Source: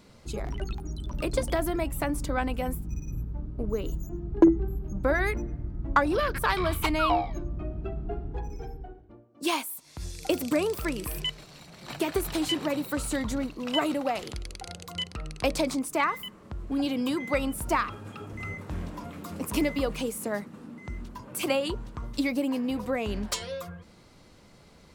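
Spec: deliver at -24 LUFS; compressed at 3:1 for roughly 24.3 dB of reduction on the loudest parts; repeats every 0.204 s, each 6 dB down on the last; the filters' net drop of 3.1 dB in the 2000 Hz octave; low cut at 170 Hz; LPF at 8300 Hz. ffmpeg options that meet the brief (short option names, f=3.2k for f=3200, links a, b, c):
-af "highpass=170,lowpass=8.3k,equalizer=f=2k:t=o:g=-4,acompressor=threshold=-47dB:ratio=3,aecho=1:1:204|408|612|816|1020|1224:0.501|0.251|0.125|0.0626|0.0313|0.0157,volume=21dB"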